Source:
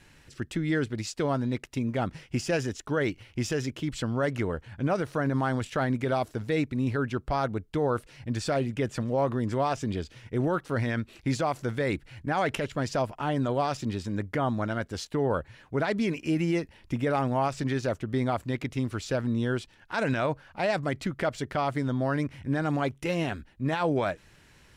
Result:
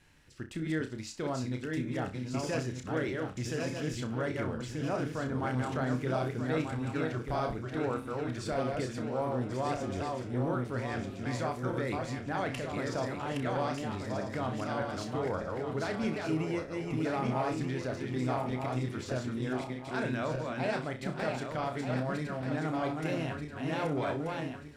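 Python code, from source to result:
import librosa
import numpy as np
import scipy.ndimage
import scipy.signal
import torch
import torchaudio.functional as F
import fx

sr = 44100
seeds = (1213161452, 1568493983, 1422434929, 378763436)

y = fx.reverse_delay_fb(x, sr, ms=617, feedback_pct=62, wet_db=-3)
y = fx.room_flutter(y, sr, wall_m=5.4, rt60_s=0.25)
y = y * librosa.db_to_amplitude(-8.0)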